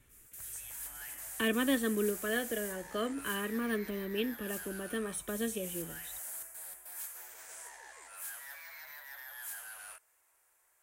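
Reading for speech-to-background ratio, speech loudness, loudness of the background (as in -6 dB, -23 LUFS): 8.0 dB, -35.0 LUFS, -43.0 LUFS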